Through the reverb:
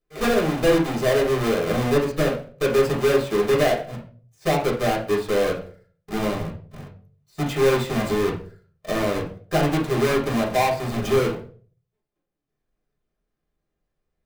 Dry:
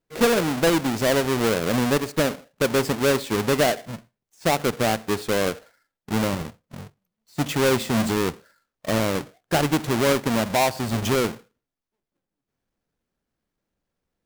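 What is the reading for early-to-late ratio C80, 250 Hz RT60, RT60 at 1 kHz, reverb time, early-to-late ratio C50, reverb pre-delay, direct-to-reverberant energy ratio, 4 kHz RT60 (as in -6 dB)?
14.0 dB, 0.50 s, 0.35 s, 0.45 s, 8.0 dB, 3 ms, -4.0 dB, 0.30 s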